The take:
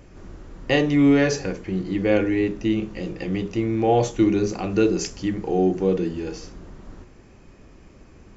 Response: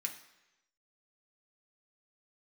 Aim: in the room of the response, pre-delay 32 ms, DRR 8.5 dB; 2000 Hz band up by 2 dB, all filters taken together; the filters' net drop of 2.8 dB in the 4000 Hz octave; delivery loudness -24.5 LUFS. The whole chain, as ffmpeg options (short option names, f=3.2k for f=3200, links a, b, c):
-filter_complex "[0:a]equalizer=f=2k:t=o:g=4,equalizer=f=4k:t=o:g=-6.5,asplit=2[a][b];[1:a]atrim=start_sample=2205,adelay=32[c];[b][c]afir=irnorm=-1:irlink=0,volume=-8dB[d];[a][d]amix=inputs=2:normalize=0,volume=-3dB"